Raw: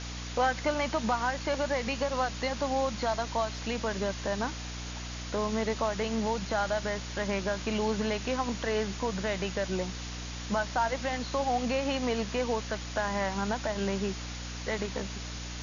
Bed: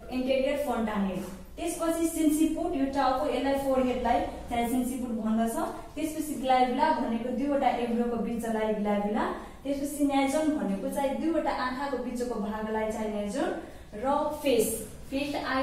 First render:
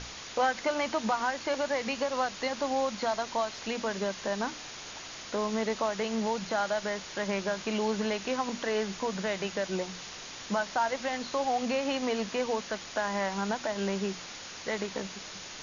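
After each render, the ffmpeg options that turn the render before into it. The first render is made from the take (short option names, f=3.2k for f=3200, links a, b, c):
-af "bandreject=f=60:t=h:w=6,bandreject=f=120:t=h:w=6,bandreject=f=180:t=h:w=6,bandreject=f=240:t=h:w=6,bandreject=f=300:t=h:w=6"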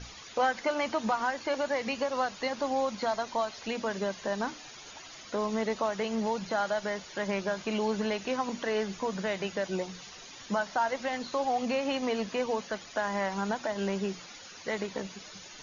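-af "afftdn=nr=12:nf=-44"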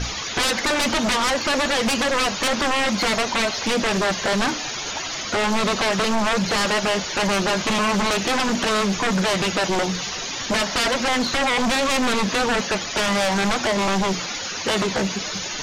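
-af "aeval=exprs='0.141*sin(PI/2*5.62*val(0)/0.141)':c=same"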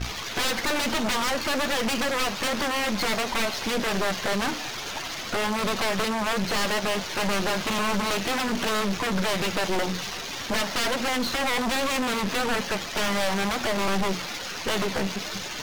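-af "adynamicsmooth=sensitivity=6.5:basefreq=1.4k,aeval=exprs='(tanh(12.6*val(0)+0.7)-tanh(0.7))/12.6':c=same"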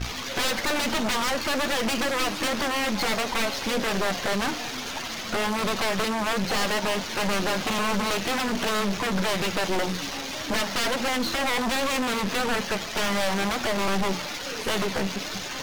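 -filter_complex "[1:a]volume=-14dB[a];[0:a][a]amix=inputs=2:normalize=0"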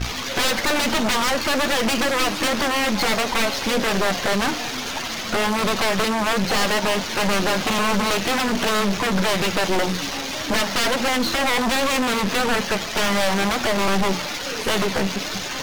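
-af "volume=5dB"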